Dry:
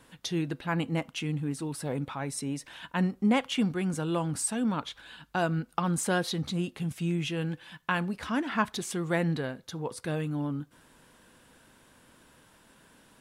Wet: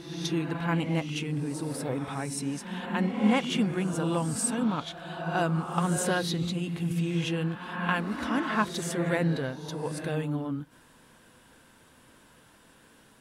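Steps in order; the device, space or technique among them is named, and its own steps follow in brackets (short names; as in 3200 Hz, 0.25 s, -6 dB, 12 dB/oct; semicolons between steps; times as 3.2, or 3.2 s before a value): reverse reverb (reverse; reverb RT60 1.7 s, pre-delay 3 ms, DRR 3.5 dB; reverse)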